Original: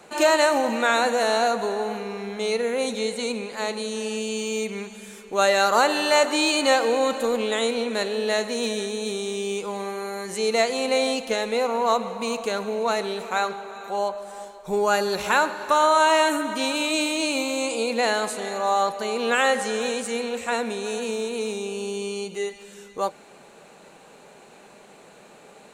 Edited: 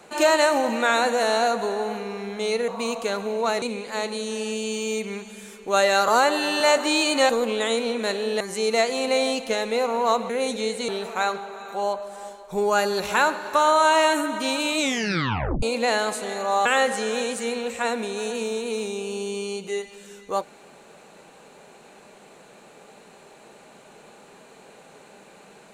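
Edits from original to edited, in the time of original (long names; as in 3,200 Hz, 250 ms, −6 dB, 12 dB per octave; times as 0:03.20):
0:02.68–0:03.27: swap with 0:12.10–0:13.04
0:05.73–0:06.08: time-stretch 1.5×
0:06.77–0:07.21: remove
0:08.32–0:10.21: remove
0:16.94: tape stop 0.84 s
0:18.81–0:19.33: remove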